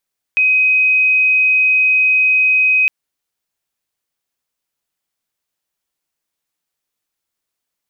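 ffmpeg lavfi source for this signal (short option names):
-f lavfi -i "sine=f=2520:d=2.51:r=44100,volume=8.56dB"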